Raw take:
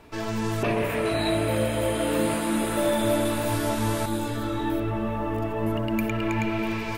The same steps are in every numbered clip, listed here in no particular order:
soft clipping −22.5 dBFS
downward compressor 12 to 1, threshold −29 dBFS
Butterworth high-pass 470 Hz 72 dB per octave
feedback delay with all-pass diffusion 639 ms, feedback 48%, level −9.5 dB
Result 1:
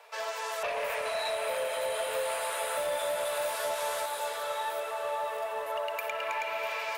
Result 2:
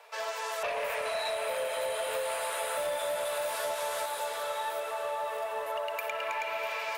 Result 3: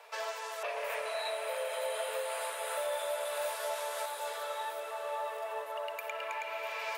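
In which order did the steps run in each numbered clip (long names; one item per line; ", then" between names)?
Butterworth high-pass, then soft clipping, then downward compressor, then feedback delay with all-pass diffusion
Butterworth high-pass, then soft clipping, then feedback delay with all-pass diffusion, then downward compressor
downward compressor, then Butterworth high-pass, then soft clipping, then feedback delay with all-pass diffusion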